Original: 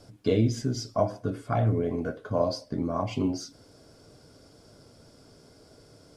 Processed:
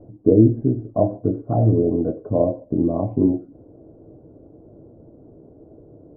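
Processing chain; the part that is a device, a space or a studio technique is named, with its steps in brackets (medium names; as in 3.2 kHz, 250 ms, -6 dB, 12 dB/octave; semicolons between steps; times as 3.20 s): under water (low-pass 690 Hz 24 dB/octave; peaking EQ 330 Hz +9 dB 0.27 oct); trim +7.5 dB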